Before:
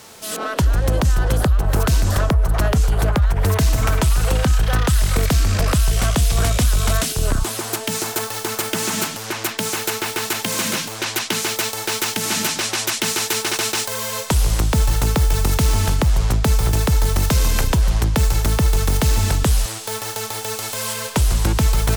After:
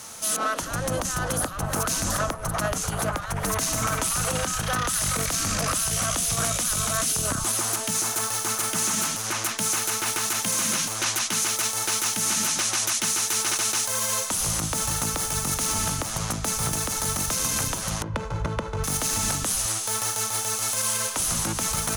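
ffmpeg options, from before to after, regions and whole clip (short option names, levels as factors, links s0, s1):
-filter_complex "[0:a]asettb=1/sr,asplit=3[s0][s1][s2];[s0]atrim=end=18.024[s3];[s1]atrim=start=18.02:end=18.84,asetpts=PTS-STARTPTS,afade=t=in:d=0.004:c=qsin,afade=t=out:st=0.816:d=0.004:c=qsin,highpass=74,aecho=1:1:2:0.55,atrim=end_sample=36162,adynamicsmooth=sensitivity=0.5:basefreq=1100[s4];[s2]atrim=start=18.836[s5];[s3][s4]acrossfade=d=0.004:c1=hsin:c2=qsin[s6];[s6][s5]acrossfade=d=0.004:c1=qsin:c2=hsin,afftfilt=real='re*lt(hypot(re,im),1)':imag='im*lt(hypot(re,im),1)':win_size=1024:overlap=0.75,equalizer=f=400:t=o:w=0.33:g=-9,equalizer=f=1250:t=o:w=0.33:g=5,equalizer=f=6300:t=o:w=0.33:g=9,equalizer=f=10000:t=o:w=0.33:g=11,alimiter=limit=0.224:level=0:latency=1:release=43,volume=0.794"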